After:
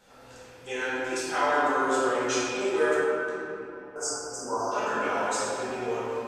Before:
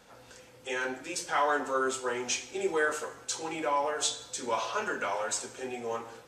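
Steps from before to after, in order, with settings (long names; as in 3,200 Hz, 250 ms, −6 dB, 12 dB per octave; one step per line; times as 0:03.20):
0:02.94–0:03.96: gate with flip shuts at −38 dBFS, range −29 dB
0:03.93–0:04.70: healed spectral selection 1,600–4,600 Hz before
rectangular room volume 140 cubic metres, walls hard, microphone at 1.2 metres
level −5 dB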